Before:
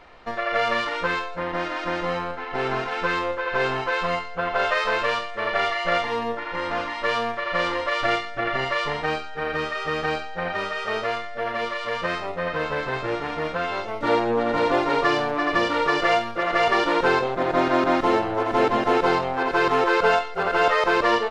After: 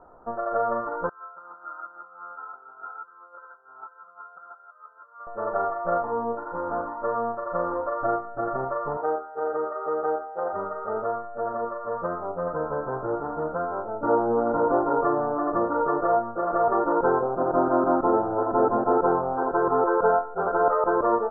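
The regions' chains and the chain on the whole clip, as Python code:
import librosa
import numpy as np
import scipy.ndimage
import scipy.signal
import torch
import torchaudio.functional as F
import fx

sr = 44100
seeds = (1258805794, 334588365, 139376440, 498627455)

y = fx.chain(x, sr, fx.over_compress(threshold_db=-30.0, ratio=-0.5),
    fx.double_bandpass(hz=2100.0, octaves=1.2), at=(1.09, 5.27))
y = fx.chain(y, sr, fx.self_delay(depth_ms=0.08),
    fx.highpass(hz=53.0, slope=12),
    fx.low_shelf_res(hz=270.0, db=-13.0, q=1.5), at=(8.97, 10.53))
y = scipy.signal.sosfilt(scipy.signal.butter(12, 1400.0, 'lowpass', fs=sr, output='sos'), y)
y = fx.low_shelf(y, sr, hz=130.0, db=-6.5)
y = fx.notch(y, sr, hz=1100.0, q=8.1)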